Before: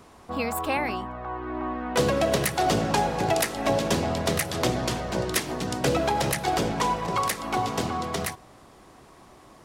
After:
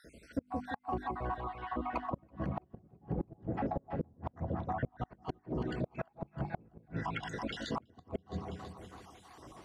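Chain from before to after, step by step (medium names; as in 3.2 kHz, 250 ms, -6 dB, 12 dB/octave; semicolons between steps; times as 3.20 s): random holes in the spectrogram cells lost 67%; high-pass 45 Hz 24 dB/octave; low-pass that closes with the level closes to 320 Hz, closed at -27 dBFS; bass shelf 200 Hz +6 dB; hum notches 50/100/150/200/250/300/350/400 Hz; in parallel at -7 dB: saturation -30 dBFS, distortion -9 dB; 4.50–4.99 s: on the sum: inverse Chebyshev low-pass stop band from 9.6 kHz, stop band 70 dB; on a send: two-band feedback delay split 910 Hz, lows 171 ms, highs 330 ms, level -5 dB; on the sum: inverted gate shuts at -20 dBFS, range -31 dB; trim -3.5 dB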